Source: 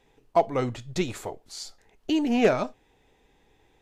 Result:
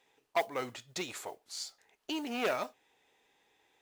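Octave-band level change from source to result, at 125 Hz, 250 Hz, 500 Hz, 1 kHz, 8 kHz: −20.0, −14.5, −11.0, −8.0, −2.5 decibels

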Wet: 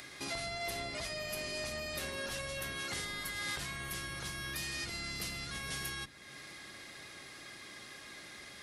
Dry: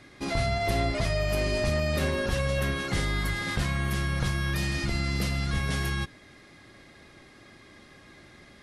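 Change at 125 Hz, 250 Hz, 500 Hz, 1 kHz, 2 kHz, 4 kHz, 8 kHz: −19.5, −16.0, −13.0, −10.5, −7.5, −4.5, −1.5 decibels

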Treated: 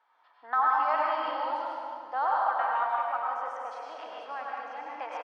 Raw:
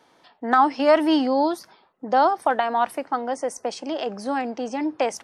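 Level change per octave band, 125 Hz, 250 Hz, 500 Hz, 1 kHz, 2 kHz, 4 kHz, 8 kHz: can't be measured, −27.5 dB, −14.0 dB, −4.5 dB, −5.0 dB, −13.5 dB, below −25 dB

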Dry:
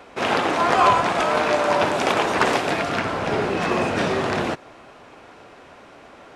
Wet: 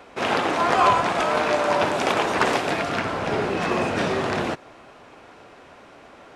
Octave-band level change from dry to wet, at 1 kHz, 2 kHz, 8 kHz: −1.5, −1.5, −1.5 decibels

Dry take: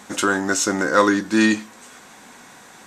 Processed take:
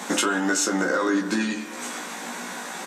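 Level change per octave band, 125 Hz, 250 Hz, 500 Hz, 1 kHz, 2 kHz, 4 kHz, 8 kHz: −5.0, −4.5, −5.0, −5.0, −4.0, −1.0, −1.0 decibels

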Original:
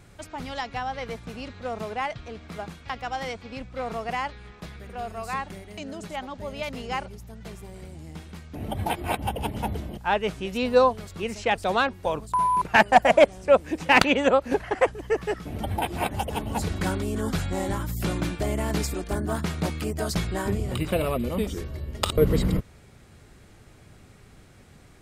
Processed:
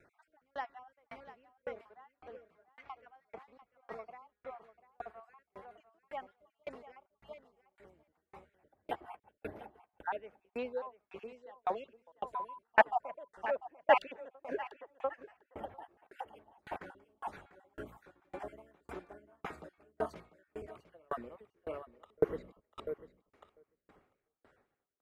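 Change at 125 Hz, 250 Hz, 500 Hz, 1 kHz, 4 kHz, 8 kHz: −29.0 dB, −22.0 dB, −14.0 dB, −12.5 dB, −23.0 dB, below −30 dB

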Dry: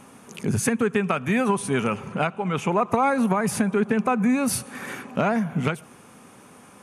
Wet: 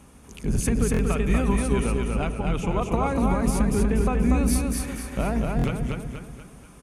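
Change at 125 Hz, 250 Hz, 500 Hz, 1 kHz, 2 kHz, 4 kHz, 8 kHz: +4.0, −1.0, −2.5, −5.5, −6.0, −2.5, −1.0 decibels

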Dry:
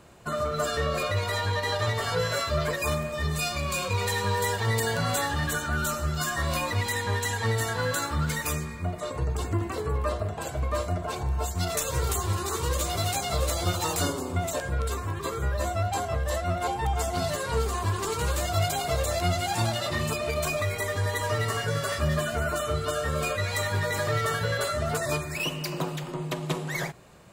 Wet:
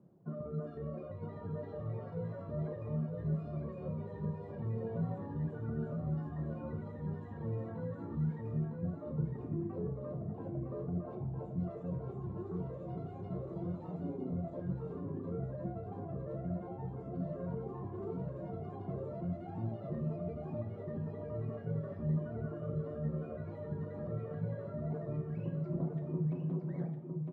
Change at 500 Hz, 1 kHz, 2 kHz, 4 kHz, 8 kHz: −12.0 dB, −21.5 dB, below −30 dB, below −40 dB, below −40 dB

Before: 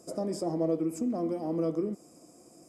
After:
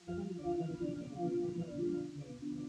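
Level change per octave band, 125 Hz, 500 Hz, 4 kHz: −3.0 dB, −9.5 dB, can't be measured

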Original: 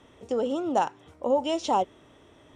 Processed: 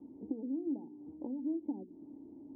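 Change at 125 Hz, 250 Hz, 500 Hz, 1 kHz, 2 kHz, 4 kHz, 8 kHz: can't be measured, −4.5 dB, −20.5 dB, −33.5 dB, below −40 dB, below −40 dB, below −35 dB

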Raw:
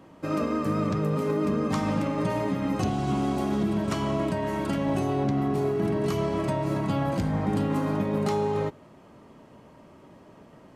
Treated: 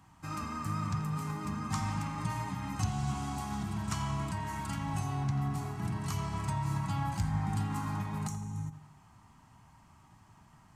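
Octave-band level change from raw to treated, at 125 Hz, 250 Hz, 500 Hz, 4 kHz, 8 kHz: −3.5, −11.5, −22.5, −5.5, +1.5 decibels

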